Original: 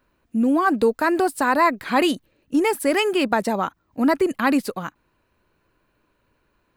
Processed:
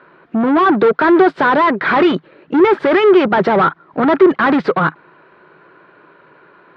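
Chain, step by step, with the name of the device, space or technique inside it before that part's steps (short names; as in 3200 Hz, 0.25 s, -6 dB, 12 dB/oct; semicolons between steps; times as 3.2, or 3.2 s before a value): overdrive pedal into a guitar cabinet (overdrive pedal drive 31 dB, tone 1800 Hz, clips at -6 dBFS; speaker cabinet 87–3500 Hz, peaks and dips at 92 Hz -10 dB, 160 Hz +10 dB, 240 Hz -4 dB, 380 Hz +7 dB, 1400 Hz +5 dB, 2700 Hz -6 dB)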